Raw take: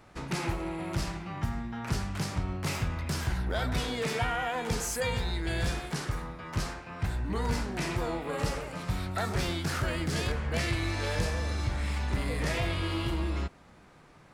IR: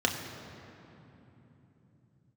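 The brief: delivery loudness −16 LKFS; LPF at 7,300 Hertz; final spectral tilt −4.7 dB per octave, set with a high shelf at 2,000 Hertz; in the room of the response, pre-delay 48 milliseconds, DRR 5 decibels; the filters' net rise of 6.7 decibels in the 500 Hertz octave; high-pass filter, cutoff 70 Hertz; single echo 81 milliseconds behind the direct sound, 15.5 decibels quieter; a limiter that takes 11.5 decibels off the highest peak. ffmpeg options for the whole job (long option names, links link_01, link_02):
-filter_complex "[0:a]highpass=70,lowpass=7300,equalizer=frequency=500:width_type=o:gain=7.5,highshelf=frequency=2000:gain=7,alimiter=level_in=1.5dB:limit=-24dB:level=0:latency=1,volume=-1.5dB,aecho=1:1:81:0.168,asplit=2[link_01][link_02];[1:a]atrim=start_sample=2205,adelay=48[link_03];[link_02][link_03]afir=irnorm=-1:irlink=0,volume=-15.5dB[link_04];[link_01][link_04]amix=inputs=2:normalize=0,volume=16.5dB"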